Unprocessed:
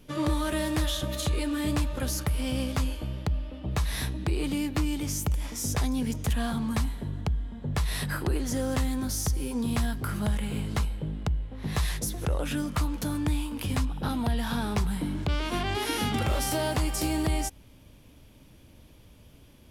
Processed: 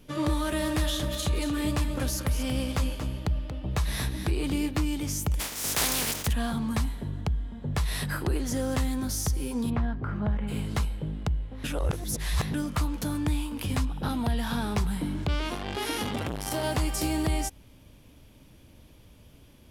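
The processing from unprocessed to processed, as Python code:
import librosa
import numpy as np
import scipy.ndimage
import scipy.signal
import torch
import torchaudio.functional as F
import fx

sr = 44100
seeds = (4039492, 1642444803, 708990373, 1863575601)

y = fx.echo_single(x, sr, ms=232, db=-9.0, at=(0.6, 4.7), fade=0.02)
y = fx.spec_flatten(y, sr, power=0.28, at=(5.39, 6.26), fade=0.02)
y = fx.lowpass(y, sr, hz=1600.0, slope=12, at=(9.69, 10.47), fade=0.02)
y = fx.transformer_sat(y, sr, knee_hz=500.0, at=(15.52, 16.64))
y = fx.edit(y, sr, fx.reverse_span(start_s=11.64, length_s=0.9), tone=tone)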